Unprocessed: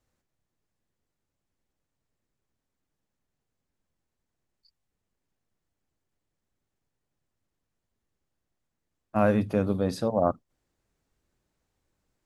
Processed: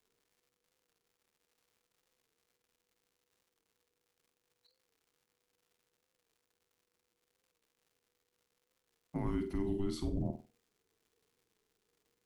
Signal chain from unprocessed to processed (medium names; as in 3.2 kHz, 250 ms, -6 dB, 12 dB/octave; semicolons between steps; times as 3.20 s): peak limiter -17.5 dBFS, peak gain reduction 8.5 dB; frequency shift -490 Hz; crackle 200 per s -55 dBFS; flutter echo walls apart 8.3 m, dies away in 0.31 s; warped record 45 rpm, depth 100 cents; trim -7 dB